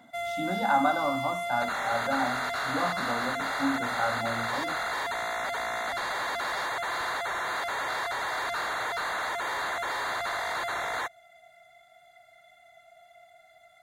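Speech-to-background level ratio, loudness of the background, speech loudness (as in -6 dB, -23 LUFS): -1.0 dB, -30.5 LUFS, -31.5 LUFS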